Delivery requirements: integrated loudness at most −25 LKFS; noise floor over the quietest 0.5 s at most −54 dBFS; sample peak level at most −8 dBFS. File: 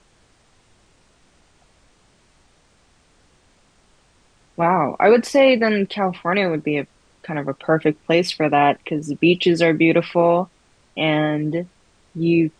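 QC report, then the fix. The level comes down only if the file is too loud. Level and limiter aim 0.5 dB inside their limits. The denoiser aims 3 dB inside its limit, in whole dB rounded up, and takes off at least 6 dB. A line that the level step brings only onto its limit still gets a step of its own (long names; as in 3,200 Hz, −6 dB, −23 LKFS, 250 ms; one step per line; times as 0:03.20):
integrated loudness −18.5 LKFS: out of spec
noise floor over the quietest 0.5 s −58 dBFS: in spec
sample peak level −4.0 dBFS: out of spec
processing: level −7 dB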